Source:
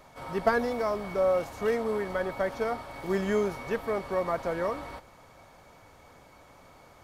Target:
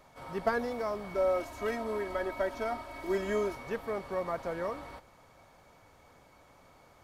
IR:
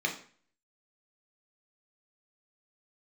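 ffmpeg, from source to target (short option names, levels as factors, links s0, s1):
-filter_complex "[0:a]asettb=1/sr,asplit=3[s0][s1][s2];[s0]atrim=end=1.144[s3];[s1]atrim=start=1.14:end=3.55,asetpts=PTS-STARTPTS,afade=t=in:d=0.004:c=qsin,afade=t=out:st=2.406:d=0.004:c=qsin,aecho=1:1:3.1:0.82,atrim=end_sample=106281[s4];[s2]atrim=start=3.546[s5];[s3][s4]acrossfade=d=0.004:c1=hsin:c2=qsin[s6];[s6][s5]acrossfade=d=0.004:c1=qsin:c2=hsin,volume=0.562"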